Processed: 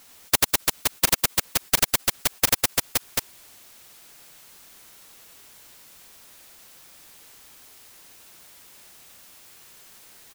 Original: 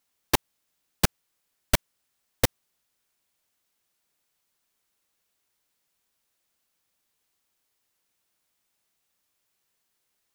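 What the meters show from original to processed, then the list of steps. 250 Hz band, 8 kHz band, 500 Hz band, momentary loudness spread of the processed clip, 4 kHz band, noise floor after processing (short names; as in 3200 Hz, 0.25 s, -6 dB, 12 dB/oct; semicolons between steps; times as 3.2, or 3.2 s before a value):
-0.5 dB, +11.0 dB, +1.0 dB, 6 LU, +8.5 dB, -52 dBFS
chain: reverse bouncing-ball echo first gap 90 ms, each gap 1.25×, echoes 5; spectral compressor 4:1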